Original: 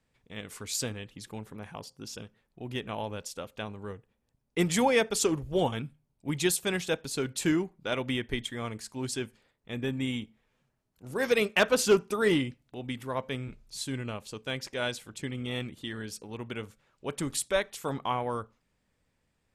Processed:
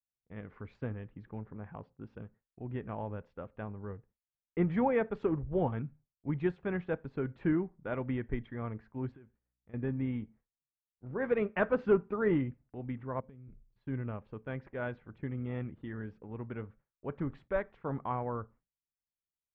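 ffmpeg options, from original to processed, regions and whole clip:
ffmpeg -i in.wav -filter_complex "[0:a]asettb=1/sr,asplit=3[link_01][link_02][link_03];[link_01]atrim=end=9.124[link_04];[link_02]atrim=start=9.12:end=9.74,asetpts=PTS-STARTPTS,afade=type=in:duration=0.004:curve=qsin,afade=type=out:start_time=0.616:duration=0.004:curve=qsin,lowpass=frequency=3700:width=0.5412,lowpass=frequency=3700:width=1.3066,aeval=exprs='val(0)+0.000501*(sin(2*PI*60*n/s)+sin(2*PI*2*60*n/s)/2+sin(2*PI*3*60*n/s)/3+sin(2*PI*4*60*n/s)/4+sin(2*PI*5*60*n/s)/5)':channel_layout=same,acompressor=threshold=-48dB:ratio=10:attack=3.2:release=140:knee=1:detection=peak[link_05];[link_03]atrim=start=9.736[link_06];[link_04][link_05]acrossfade=duration=0.004:curve1=hsin:curve2=qsin[link_07];[link_07][link_06]acrossfade=duration=0.004:curve1=qsin:curve2=hsin,asettb=1/sr,asplit=3[link_08][link_09][link_10];[link_08]atrim=end=13.204[link_11];[link_09]atrim=start=13.2:end=13.76,asetpts=PTS-STARTPTS,afade=type=in:duration=0.004:curve=qsin,afade=type=out:start_time=0.556:duration=0.004:curve=qsin,equalizer=frequency=1300:width_type=o:width=2.4:gain=-11,acompressor=threshold=-46dB:ratio=20:attack=3.2:release=140:knee=1:detection=peak[link_12];[link_10]atrim=start=13.756[link_13];[link_11][link_12]acrossfade=duration=0.004:curve1=hsin:curve2=qsin[link_14];[link_14][link_13]acrossfade=duration=0.004:curve1=qsin:curve2=hsin,lowpass=frequency=1800:width=0.5412,lowpass=frequency=1800:width=1.3066,agate=range=-33dB:threshold=-51dB:ratio=3:detection=peak,lowshelf=frequency=200:gain=8,volume=-5.5dB" out.wav

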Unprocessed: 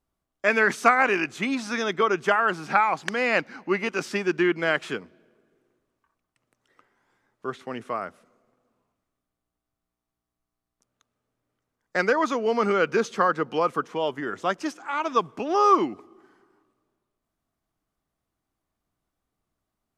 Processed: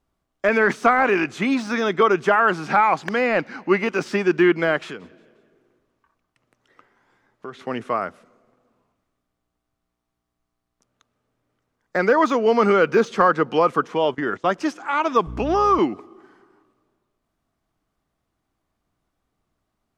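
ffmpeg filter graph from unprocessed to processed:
ffmpeg -i in.wav -filter_complex "[0:a]asettb=1/sr,asplit=3[link_01][link_02][link_03];[link_01]atrim=end=4.774[link_04];[link_02]atrim=start=4.77:end=7.66,asetpts=PTS-STARTPTS,afade=type=in:duration=0.004:curve=qsin,afade=type=out:start_time=2.886:duration=0.004:curve=qsin,equalizer=frequency=8400:width_type=o:width=0.2:gain=-3,acompressor=threshold=-39dB:ratio=3:attack=3.2:release=140:knee=1:detection=peak,asplit=4[link_05][link_06][link_07][link_08];[link_06]adelay=177,afreqshift=54,volume=-23dB[link_09];[link_07]adelay=354,afreqshift=108,volume=-30.1dB[link_10];[link_08]adelay=531,afreqshift=162,volume=-37.3dB[link_11];[link_05][link_09][link_10][link_11]amix=inputs=4:normalize=0,atrim=end_sample=127449[link_12];[link_03]atrim=start=7.656[link_13];[link_04][link_12]acrossfade=duration=0.004:curve1=hsin:curve2=qsin[link_14];[link_14][link_13]acrossfade=duration=0.004:curve1=qsin:curve2=hsin,asettb=1/sr,asplit=3[link_15][link_16][link_17];[link_15]atrim=end=14.054[link_18];[link_16]atrim=start=14.05:end=14.48,asetpts=PTS-STARTPTS,afade=type=in:duration=0.004:curve=qsin,afade=type=out:start_time=0.426:duration=0.004:curve=qsin,lowpass=7900,agate=range=-14dB:threshold=-39dB:ratio=16:release=100:detection=peak[link_19];[link_17]atrim=start=14.476[link_20];[link_18][link_19]acrossfade=duration=0.004:curve1=hsin:curve2=qsin[link_21];[link_21][link_20]acrossfade=duration=0.004:curve1=qsin:curve2=hsin,asettb=1/sr,asplit=3[link_22][link_23][link_24];[link_22]atrim=end=15.274[link_25];[link_23]atrim=start=15.27:end=15.79,asetpts=PTS-STARTPTS,afade=type=in:duration=0.004:curve=qsin,afade=type=out:start_time=0.516:duration=0.004:curve=qsin,aeval=exprs='val(0)+0.0141*(sin(2*PI*60*n/s)+sin(2*PI*2*60*n/s)/2+sin(2*PI*3*60*n/s)/3+sin(2*PI*4*60*n/s)/4+sin(2*PI*5*60*n/s)/5)':channel_layout=same,acompressor=threshold=-23dB:ratio=2:attack=3.2:release=140:knee=1:detection=peak[link_26];[link_24]atrim=start=15.786[link_27];[link_25][link_26]acrossfade=duration=0.004:curve1=hsin:curve2=qsin[link_28];[link_28][link_27]acrossfade=duration=0.004:curve1=qsin:curve2=hsin,deesser=1,highshelf=frequency=8000:gain=-9.5,volume=6.5dB" out.wav

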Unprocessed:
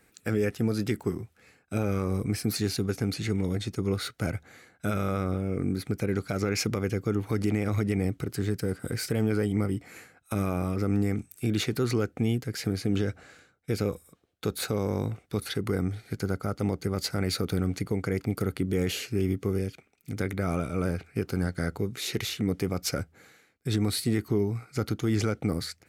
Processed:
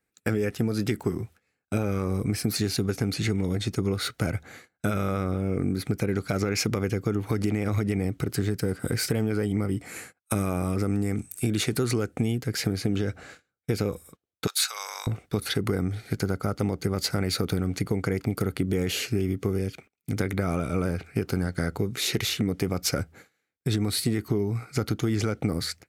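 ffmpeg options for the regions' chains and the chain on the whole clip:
ffmpeg -i in.wav -filter_complex "[0:a]asettb=1/sr,asplit=3[link_01][link_02][link_03];[link_01]atrim=end=9.784[link_04];[link_02]atrim=start=9.78:end=12.32,asetpts=PTS-STARTPTS,afade=type=in:duration=0.004:curve=qsin,afade=type=out:start_time=2.536:duration=0.004:curve=qsin,equalizer=frequency=8900:width_type=o:width=0.68:gain=8,agate=range=-33dB:threshold=-56dB:ratio=3:release=100:detection=peak[link_05];[link_03]atrim=start=12.316[link_06];[link_04][link_05]acrossfade=duration=0.004:curve1=hsin:curve2=qsin[link_07];[link_07][link_06]acrossfade=duration=0.004:curve1=qsin:curve2=hsin,asettb=1/sr,asplit=3[link_08][link_09][link_10];[link_08]atrim=end=14.474[link_11];[link_09]atrim=start=14.47:end=15.07,asetpts=PTS-STARTPTS,afade=type=in:duration=0.004:curve=qsin,afade=type=out:start_time=0.596:duration=0.004:curve=qsin,highpass=frequency=1000:width=0.5412,highpass=frequency=1000:width=1.3066,equalizer=frequency=5800:width_type=o:width=2.2:gain=9.5[link_12];[link_10]atrim=start=15.066[link_13];[link_11][link_12]acrossfade=duration=0.004:curve1=hsin:curve2=qsin[link_14];[link_14][link_13]acrossfade=duration=0.004:curve1=qsin:curve2=hsin,agate=range=-24dB:threshold=-51dB:ratio=16:detection=peak,acompressor=threshold=-28dB:ratio=6,volume=6.5dB" out.wav

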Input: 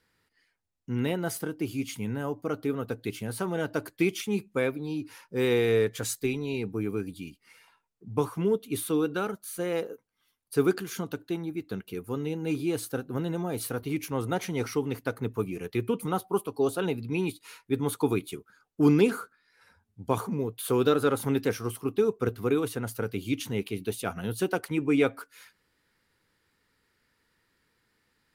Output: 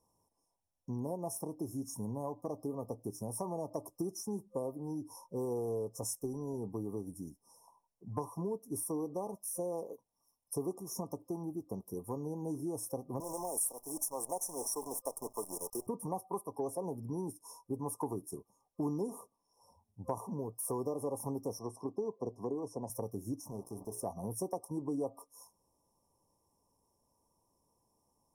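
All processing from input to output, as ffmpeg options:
ffmpeg -i in.wav -filter_complex "[0:a]asettb=1/sr,asplit=3[link_01][link_02][link_03];[link_01]atrim=end=13.204[link_04];[link_02]atrim=start=13.2:end=15.87,asetpts=PTS-STARTPTS,afade=type=in:duration=0.004:curve=qsin,afade=type=out:start_time=2.666:duration=0.004:curve=qsin,highpass=380,highshelf=frequency=5700:width_type=q:width=3:gain=12,acrusher=bits=7:dc=4:mix=0:aa=0.000001[link_05];[link_03]atrim=start=15.866[link_06];[link_04][link_05]acrossfade=duration=0.004:curve1=hsin:curve2=qsin[link_07];[link_07][link_06]acrossfade=duration=0.004:curve1=qsin:curve2=hsin,asettb=1/sr,asplit=3[link_08][link_09][link_10];[link_08]atrim=end=21.594[link_11];[link_09]atrim=start=21.59:end=22.9,asetpts=PTS-STARTPTS,afade=type=in:duration=0.004:curve=qsin,afade=type=out:start_time=1.306:duration=0.004:curve=qsin,highpass=150,lowpass=5100,bandreject=frequency=1200:width=7.9[link_12];[link_10]atrim=start=22.896[link_13];[link_11][link_12]acrossfade=duration=0.004:curve1=hsin:curve2=qsin[link_14];[link_14][link_13]acrossfade=duration=0.004:curve1=qsin:curve2=hsin,asettb=1/sr,asplit=3[link_15][link_16][link_17];[link_15]atrim=end=23.404[link_18];[link_16]atrim=start=23.4:end=24.03,asetpts=PTS-STARTPTS,afade=type=in:duration=0.004:curve=qsin,afade=type=out:start_time=0.626:duration=0.004:curve=qsin,bandreject=frequency=60:width_type=h:width=6,bandreject=frequency=120:width_type=h:width=6,bandreject=frequency=180:width_type=h:width=6,bandreject=frequency=240:width_type=h:width=6,bandreject=frequency=300:width_type=h:width=6,bandreject=frequency=360:width_type=h:width=6,bandreject=frequency=420:width_type=h:width=6,bandreject=frequency=480:width_type=h:width=6,bandreject=frequency=540:width_type=h:width=6,bandreject=frequency=600:width_type=h:width=6,acompressor=threshold=-37dB:ratio=2:attack=3.2:release=140:knee=1:detection=peak,aeval=exprs='sgn(val(0))*max(abs(val(0))-0.00282,0)':channel_layout=same[link_19];[link_17]atrim=start=24.026[link_20];[link_18][link_19]acrossfade=duration=0.004:curve1=hsin:curve2=qsin[link_21];[link_21][link_20]acrossfade=duration=0.004:curve1=qsin:curve2=hsin,afftfilt=real='re*(1-between(b*sr/4096,1200,5200))':imag='im*(1-between(b*sr/4096,1200,5200))':win_size=4096:overlap=0.75,superequalizer=8b=2.24:9b=2.24:14b=2:16b=2,acompressor=threshold=-33dB:ratio=3,volume=-3.5dB" out.wav

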